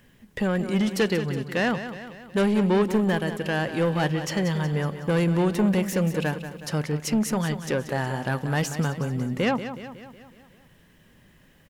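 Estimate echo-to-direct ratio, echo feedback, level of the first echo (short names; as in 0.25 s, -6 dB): -9.5 dB, 55%, -11.0 dB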